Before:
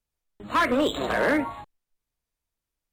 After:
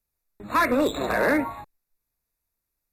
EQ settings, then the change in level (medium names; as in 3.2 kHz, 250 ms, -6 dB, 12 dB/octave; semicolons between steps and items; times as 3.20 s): Butterworth band-stop 3.1 kHz, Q 3.7; peaking EQ 12 kHz +14.5 dB 0.23 oct; +1.0 dB